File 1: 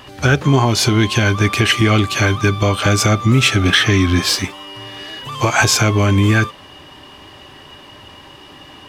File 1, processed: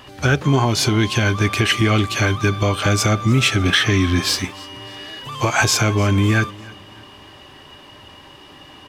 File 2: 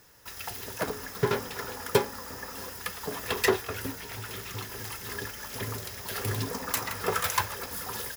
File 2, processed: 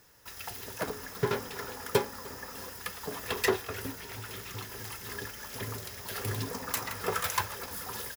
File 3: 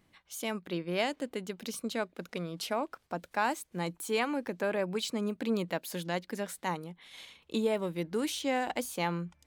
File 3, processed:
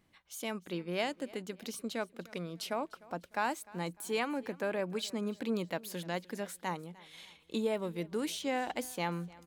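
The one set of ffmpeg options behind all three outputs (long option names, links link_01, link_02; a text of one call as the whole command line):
ffmpeg -i in.wav -af "aecho=1:1:301|602|903:0.0794|0.031|0.0121,volume=-3dB" out.wav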